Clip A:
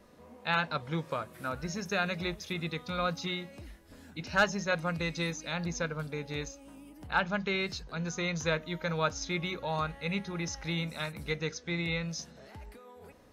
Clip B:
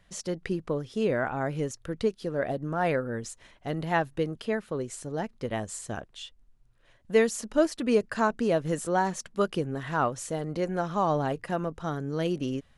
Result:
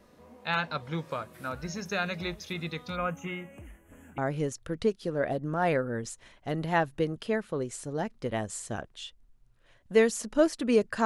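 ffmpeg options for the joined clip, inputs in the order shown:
-filter_complex "[0:a]asplit=3[a][b][c];[a]afade=t=out:st=2.95:d=0.02[d];[b]asuperstop=centerf=4500:order=8:qfactor=1.3,afade=t=in:st=2.95:d=0.02,afade=t=out:st=4.18:d=0.02[e];[c]afade=t=in:st=4.18:d=0.02[f];[d][e][f]amix=inputs=3:normalize=0,apad=whole_dur=11.05,atrim=end=11.05,atrim=end=4.182[g];[1:a]atrim=start=1.368:end=8.24[h];[g][h]acrossfade=d=0.004:c1=hsin:c2=hsin"

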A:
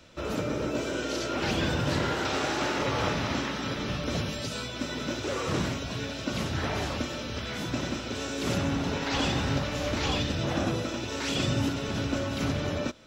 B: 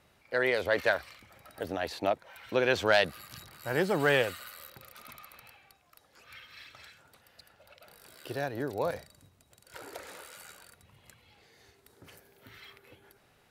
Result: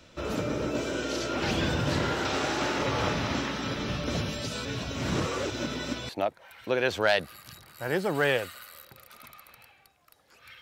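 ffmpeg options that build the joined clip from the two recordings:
-filter_complex "[0:a]apad=whole_dur=10.61,atrim=end=10.61,asplit=2[a][b];[a]atrim=end=4.652[c];[b]atrim=start=4.648:end=6.092,asetpts=PTS-STARTPTS,areverse[d];[1:a]atrim=start=1.938:end=6.46[e];[c][d]acrossfade=d=0.004:c1=hsin:c2=hsin[f];[f][e]acrossfade=d=0.004:c1=hsin:c2=hsin"

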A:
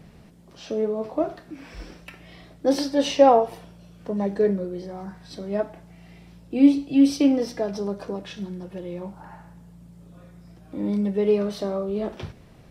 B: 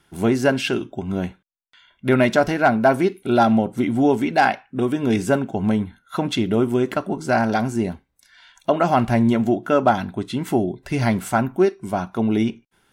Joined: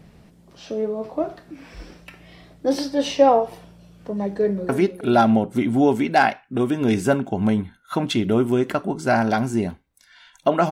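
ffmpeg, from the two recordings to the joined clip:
-filter_complex "[0:a]apad=whole_dur=10.71,atrim=end=10.71,atrim=end=4.692[a];[1:a]atrim=start=2.908:end=8.93[b];[a][b]acrossfade=d=0.004:c1=hsin:c2=hsin,asplit=2[c][d];[d]afade=t=in:st=4.25:d=0.01,afade=t=out:st=4.69:d=0.01,aecho=0:1:310|620|930|1240|1550:0.298538|0.134342|0.060454|0.0272043|0.0122419[e];[c][e]amix=inputs=2:normalize=0"

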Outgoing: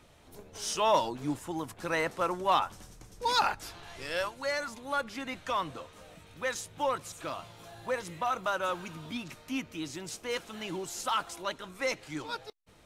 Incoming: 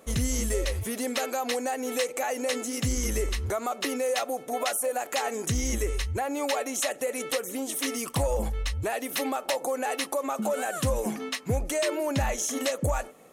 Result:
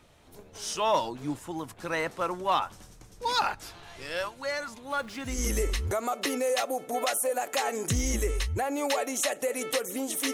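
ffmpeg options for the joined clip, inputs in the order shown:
-filter_complex "[0:a]asettb=1/sr,asplit=3[a][b][c];[a]atrim=end=4.904[d];[b]atrim=start=4.9:end=5.43,asetpts=PTS-STARTPTS,afade=t=in:d=0.004:c=qsin,afade=t=out:st=0.526:d=0.004:c=qsin,aeval=exprs='val(0)+0.5*0.00398*sgn(val(0))':c=same[e];[c]atrim=start=5.426[f];[d][e]acrossfade=d=0.004:c1=hsin:c2=qsin[g];[g][f]acrossfade=d=0.004:c1=qsin:c2=hsin,apad=whole_dur=10.33,atrim=end=10.33,atrim=end=5.43,asetpts=PTS-STARTPTS[h];[1:a]atrim=start=2.82:end=7.92,asetpts=PTS-STARTPTS[i];[h][i]acrossfade=d=0.2:c1=tri:c2=tri"

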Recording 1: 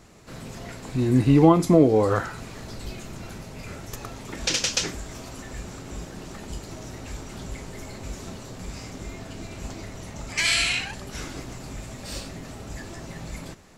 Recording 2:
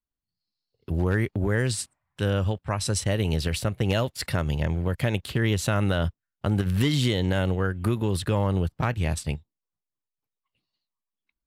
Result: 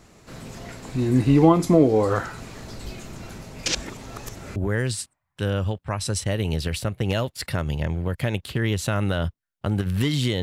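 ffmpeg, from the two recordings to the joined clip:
-filter_complex "[0:a]apad=whole_dur=10.42,atrim=end=10.42,asplit=2[a][b];[a]atrim=end=3.662[c];[b]atrim=start=3.658:end=4.562,asetpts=PTS-STARTPTS,areverse[d];[1:a]atrim=start=1.358:end=7.22[e];[c][d]acrossfade=d=0.004:c1=hsin:c2=hsin[f];[f][e]acrossfade=d=0.004:c1=hsin:c2=hsin"

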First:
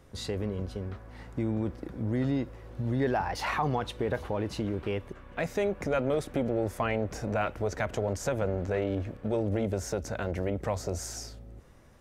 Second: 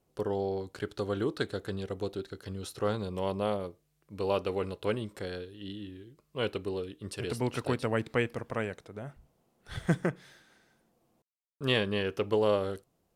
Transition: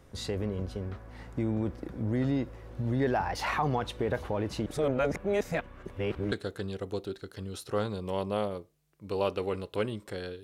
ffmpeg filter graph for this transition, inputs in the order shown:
-filter_complex "[0:a]apad=whole_dur=10.43,atrim=end=10.43,asplit=2[a][b];[a]atrim=end=4.662[c];[b]atrim=start=4.658:end=6.322,asetpts=PTS-STARTPTS,areverse[d];[1:a]atrim=start=1.408:end=5.52[e];[c][d]acrossfade=d=0.004:c1=hsin:c2=hsin[f];[f][e]acrossfade=d=0.004:c1=hsin:c2=hsin"

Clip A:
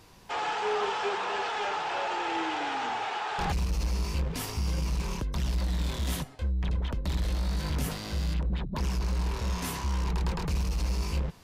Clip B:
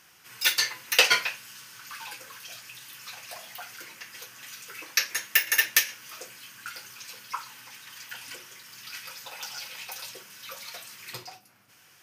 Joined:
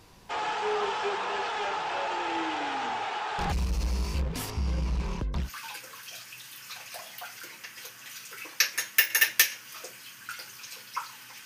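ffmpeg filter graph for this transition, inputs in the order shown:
-filter_complex "[0:a]asettb=1/sr,asplit=3[a][b][c];[a]atrim=end=4.504[d];[b]atrim=start=4.5:end=5.5,asetpts=PTS-STARTPTS,afade=t=in:d=0.004:c=qsin,afade=t=out:st=0.996:d=0.004:c=qsin,aemphasis=mode=reproduction:type=50fm[e];[c]atrim=start=5.496[f];[d][e]acrossfade=d=0.004:c1=hsin:c2=qsin[g];[g][f]acrossfade=d=0.004:c1=qsin:c2=hsin,apad=whole_dur=11.45,atrim=end=11.45,atrim=end=5.5,asetpts=PTS-STARTPTS[h];[1:a]atrim=start=1.77:end=7.82,asetpts=PTS-STARTPTS[i];[h][i]acrossfade=d=0.1:c1=tri:c2=tri"

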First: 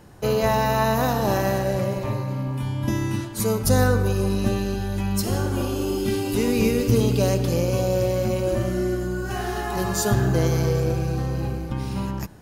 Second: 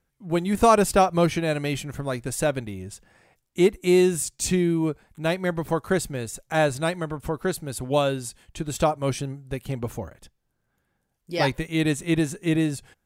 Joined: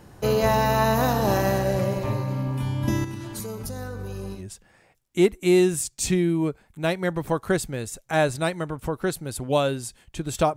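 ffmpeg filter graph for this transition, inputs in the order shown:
-filter_complex "[0:a]asettb=1/sr,asplit=3[a][b][c];[a]atrim=end=3.044[d];[b]atrim=start=3.04:end=4.44,asetpts=PTS-STARTPTS,afade=t=in:d=0.004:c=qsin,afade=t=out:st=1.396:d=0.004:c=qsin,acompressor=threshold=-29dB:ratio=16:attack=3.2:release=140:knee=1:detection=peak[e];[c]atrim=start=4.436[f];[d][e]acrossfade=d=0.004:c1=hsin:c2=qsin[g];[g][f]acrossfade=d=0.004:c1=qsin:c2=hsin,apad=whole_dur=10.56,atrim=end=10.56,atrim=end=4.44,asetpts=PTS-STARTPTS[h];[1:a]atrim=start=2.73:end=8.97,asetpts=PTS-STARTPTS[i];[h][i]acrossfade=d=0.12:c1=tri:c2=tri"

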